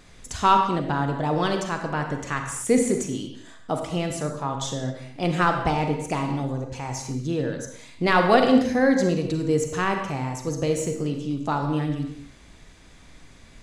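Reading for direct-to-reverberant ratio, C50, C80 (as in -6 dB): 4.0 dB, 5.5 dB, 7.5 dB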